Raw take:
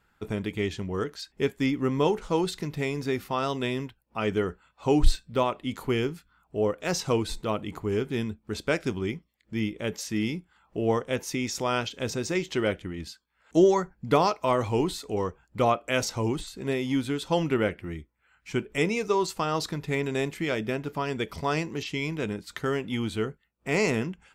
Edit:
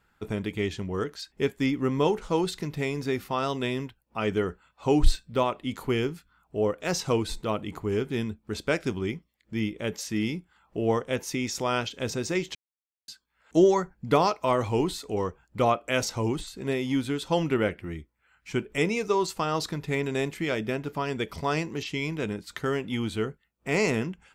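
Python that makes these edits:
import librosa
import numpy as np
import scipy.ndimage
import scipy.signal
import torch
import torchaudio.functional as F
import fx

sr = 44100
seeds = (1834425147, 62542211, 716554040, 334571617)

y = fx.edit(x, sr, fx.silence(start_s=12.55, length_s=0.53), tone=tone)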